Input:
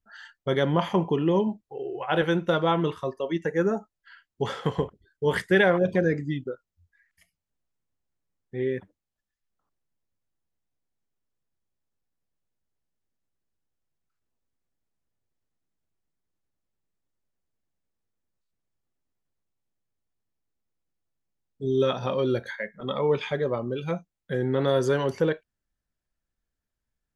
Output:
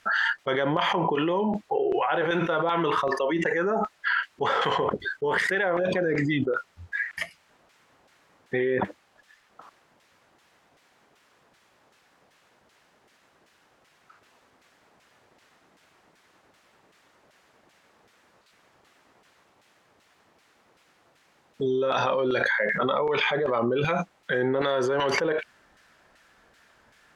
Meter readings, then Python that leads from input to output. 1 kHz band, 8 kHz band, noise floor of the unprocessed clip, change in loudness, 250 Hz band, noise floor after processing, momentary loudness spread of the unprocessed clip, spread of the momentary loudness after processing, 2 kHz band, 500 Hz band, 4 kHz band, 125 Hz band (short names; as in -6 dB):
+5.5 dB, n/a, under -85 dBFS, +1.0 dB, -1.0 dB, -64 dBFS, 11 LU, 6 LU, +6.0 dB, 0.0 dB, +4.0 dB, -5.0 dB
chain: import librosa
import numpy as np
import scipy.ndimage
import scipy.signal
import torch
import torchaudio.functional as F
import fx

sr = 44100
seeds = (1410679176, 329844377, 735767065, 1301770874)

y = fx.wow_flutter(x, sr, seeds[0], rate_hz=2.1, depth_cents=23.0)
y = fx.filter_lfo_bandpass(y, sr, shape='saw_down', hz=2.6, low_hz=740.0, high_hz=2200.0, q=0.74)
y = fx.env_flatten(y, sr, amount_pct=100)
y = F.gain(torch.from_numpy(y), -3.5).numpy()